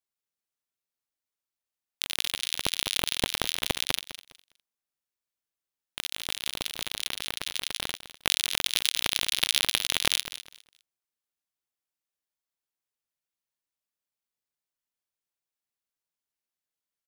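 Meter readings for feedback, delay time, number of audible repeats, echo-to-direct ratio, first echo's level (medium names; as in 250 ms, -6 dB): 22%, 204 ms, 2, -13.5 dB, -13.5 dB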